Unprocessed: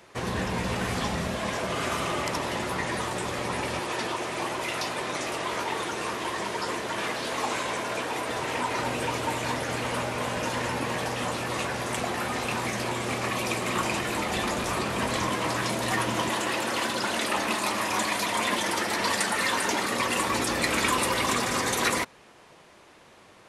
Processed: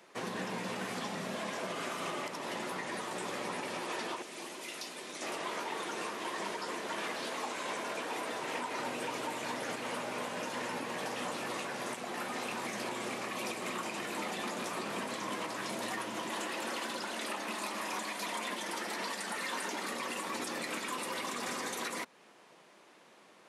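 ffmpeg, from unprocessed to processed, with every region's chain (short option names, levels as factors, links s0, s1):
-filter_complex "[0:a]asettb=1/sr,asplit=3[s0][s1][s2];[s0]atrim=end=4.224[s3];[s1]atrim=start=4.22:end=5.22,asetpts=PTS-STARTPTS,afade=t=in:d=0.004:c=qsin,afade=t=out:st=0.996:d=0.004:c=qsin,highpass=220,equalizer=f=950:t=o:w=2.9:g=-11[s4];[s2]atrim=start=5.216[s5];[s3][s4]acrossfade=d=0.004:c1=hsin:c2=qsin[s6];[s6][s5]acrossfade=d=0.004:c1=qsin:c2=hsin,highpass=f=170:w=0.5412,highpass=f=170:w=1.3066,alimiter=limit=0.0841:level=0:latency=1:release=213,volume=0.501"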